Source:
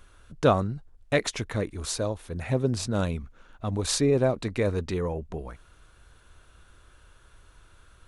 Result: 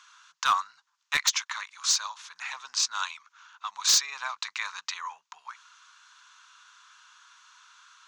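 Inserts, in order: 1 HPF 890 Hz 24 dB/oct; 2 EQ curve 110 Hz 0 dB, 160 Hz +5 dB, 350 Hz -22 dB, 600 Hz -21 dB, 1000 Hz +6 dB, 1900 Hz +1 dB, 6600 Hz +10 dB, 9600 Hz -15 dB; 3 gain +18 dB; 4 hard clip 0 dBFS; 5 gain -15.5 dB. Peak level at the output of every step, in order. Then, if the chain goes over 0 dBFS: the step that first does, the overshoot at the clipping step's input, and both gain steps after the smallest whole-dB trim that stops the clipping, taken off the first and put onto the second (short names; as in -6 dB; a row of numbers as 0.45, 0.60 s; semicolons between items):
-12.5, -8.0, +10.0, 0.0, -15.5 dBFS; step 3, 10.0 dB; step 3 +8 dB, step 5 -5.5 dB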